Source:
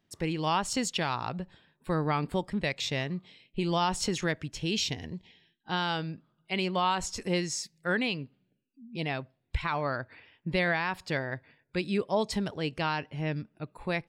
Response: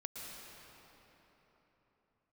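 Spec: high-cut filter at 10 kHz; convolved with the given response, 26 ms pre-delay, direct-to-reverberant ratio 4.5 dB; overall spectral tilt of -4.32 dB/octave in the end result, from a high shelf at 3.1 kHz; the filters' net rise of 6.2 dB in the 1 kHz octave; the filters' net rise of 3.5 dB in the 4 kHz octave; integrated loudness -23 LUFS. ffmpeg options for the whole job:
-filter_complex "[0:a]lowpass=10000,equalizer=f=1000:t=o:g=7.5,highshelf=f=3100:g=-3,equalizer=f=4000:t=o:g=6.5,asplit=2[s0][s1];[1:a]atrim=start_sample=2205,adelay=26[s2];[s1][s2]afir=irnorm=-1:irlink=0,volume=0.668[s3];[s0][s3]amix=inputs=2:normalize=0,volume=1.68"

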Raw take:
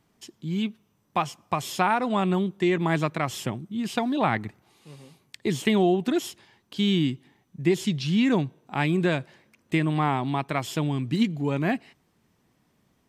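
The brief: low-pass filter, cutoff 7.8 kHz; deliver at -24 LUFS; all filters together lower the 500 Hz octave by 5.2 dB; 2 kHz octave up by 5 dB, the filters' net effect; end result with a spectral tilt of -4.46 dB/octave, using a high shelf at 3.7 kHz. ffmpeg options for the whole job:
-af "lowpass=7800,equalizer=f=500:t=o:g=-8.5,equalizer=f=2000:t=o:g=8.5,highshelf=f=3700:g=-7,volume=1.33"

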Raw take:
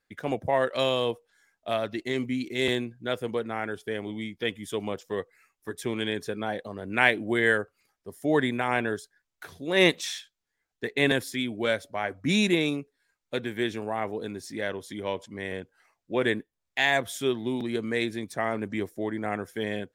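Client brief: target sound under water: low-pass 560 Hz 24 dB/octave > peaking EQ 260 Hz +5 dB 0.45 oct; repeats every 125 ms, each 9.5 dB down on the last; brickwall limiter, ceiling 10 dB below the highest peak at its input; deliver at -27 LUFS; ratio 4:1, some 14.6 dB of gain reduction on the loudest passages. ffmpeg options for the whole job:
-af "acompressor=threshold=0.0224:ratio=4,alimiter=level_in=1.41:limit=0.0631:level=0:latency=1,volume=0.708,lowpass=f=560:w=0.5412,lowpass=f=560:w=1.3066,equalizer=f=260:t=o:w=0.45:g=5,aecho=1:1:125|250|375|500:0.335|0.111|0.0365|0.012,volume=3.98"

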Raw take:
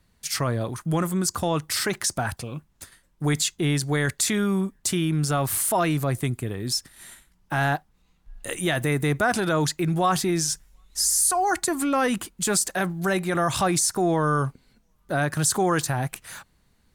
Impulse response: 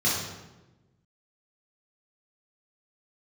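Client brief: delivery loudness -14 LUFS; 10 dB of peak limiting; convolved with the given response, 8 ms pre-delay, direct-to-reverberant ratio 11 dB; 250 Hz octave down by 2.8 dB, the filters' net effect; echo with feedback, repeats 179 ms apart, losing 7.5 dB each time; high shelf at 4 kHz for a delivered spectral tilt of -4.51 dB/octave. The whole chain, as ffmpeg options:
-filter_complex "[0:a]equalizer=f=250:t=o:g=-4.5,highshelf=f=4000:g=-8,alimiter=limit=0.075:level=0:latency=1,aecho=1:1:179|358|537|716|895:0.422|0.177|0.0744|0.0312|0.0131,asplit=2[s0][s1];[1:a]atrim=start_sample=2205,adelay=8[s2];[s1][s2]afir=irnorm=-1:irlink=0,volume=0.0668[s3];[s0][s3]amix=inputs=2:normalize=0,volume=6.31"

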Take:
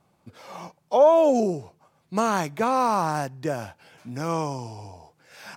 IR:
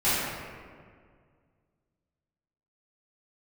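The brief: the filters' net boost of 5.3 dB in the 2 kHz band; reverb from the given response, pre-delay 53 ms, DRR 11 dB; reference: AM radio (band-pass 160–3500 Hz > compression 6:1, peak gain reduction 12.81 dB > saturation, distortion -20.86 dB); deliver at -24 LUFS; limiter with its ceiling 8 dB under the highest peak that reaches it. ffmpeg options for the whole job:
-filter_complex "[0:a]equalizer=f=2000:t=o:g=8,alimiter=limit=0.178:level=0:latency=1,asplit=2[s0][s1];[1:a]atrim=start_sample=2205,adelay=53[s2];[s1][s2]afir=irnorm=-1:irlink=0,volume=0.0473[s3];[s0][s3]amix=inputs=2:normalize=0,highpass=160,lowpass=3500,acompressor=threshold=0.0251:ratio=6,asoftclip=threshold=0.0501,volume=5.31"

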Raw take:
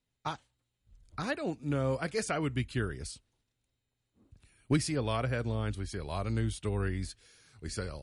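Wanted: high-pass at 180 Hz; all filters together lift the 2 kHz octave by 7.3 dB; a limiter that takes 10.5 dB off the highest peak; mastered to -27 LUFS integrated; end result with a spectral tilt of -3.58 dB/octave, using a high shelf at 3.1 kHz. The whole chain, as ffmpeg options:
-af "highpass=180,equalizer=f=2000:t=o:g=7.5,highshelf=f=3100:g=6,volume=2.66,alimiter=limit=0.178:level=0:latency=1"

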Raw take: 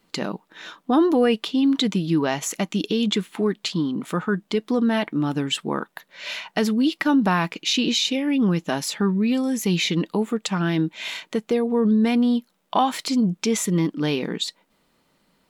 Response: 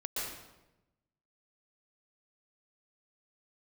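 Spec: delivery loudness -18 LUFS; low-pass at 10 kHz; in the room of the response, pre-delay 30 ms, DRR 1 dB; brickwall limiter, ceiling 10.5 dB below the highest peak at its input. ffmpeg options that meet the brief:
-filter_complex "[0:a]lowpass=10000,alimiter=limit=0.126:level=0:latency=1,asplit=2[s0][s1];[1:a]atrim=start_sample=2205,adelay=30[s2];[s1][s2]afir=irnorm=-1:irlink=0,volume=0.596[s3];[s0][s3]amix=inputs=2:normalize=0,volume=2.11"

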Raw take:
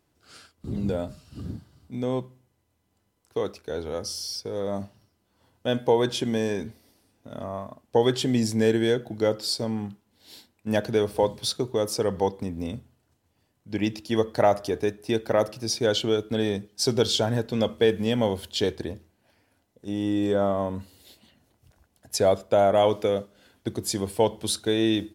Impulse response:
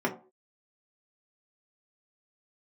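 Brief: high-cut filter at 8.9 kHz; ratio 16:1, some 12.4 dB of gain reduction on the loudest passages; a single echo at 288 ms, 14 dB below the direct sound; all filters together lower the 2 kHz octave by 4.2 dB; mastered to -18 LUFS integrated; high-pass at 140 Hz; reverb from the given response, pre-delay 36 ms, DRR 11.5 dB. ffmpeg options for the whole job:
-filter_complex "[0:a]highpass=140,lowpass=8900,equalizer=f=2000:t=o:g=-5.5,acompressor=threshold=0.0398:ratio=16,aecho=1:1:288:0.2,asplit=2[s0][s1];[1:a]atrim=start_sample=2205,adelay=36[s2];[s1][s2]afir=irnorm=-1:irlink=0,volume=0.0794[s3];[s0][s3]amix=inputs=2:normalize=0,volume=6.31"

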